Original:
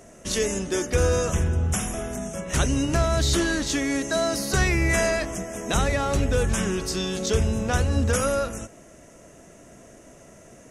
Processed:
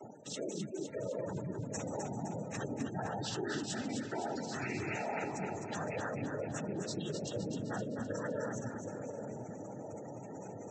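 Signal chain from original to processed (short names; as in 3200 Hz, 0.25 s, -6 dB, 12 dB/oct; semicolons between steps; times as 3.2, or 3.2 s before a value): noise vocoder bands 12; reverse; compressor 5:1, threshold -41 dBFS, peak gain reduction 19.5 dB; reverse; spectral gate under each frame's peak -15 dB strong; split-band echo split 760 Hz, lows 0.752 s, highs 0.257 s, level -5.5 dB; gain +3 dB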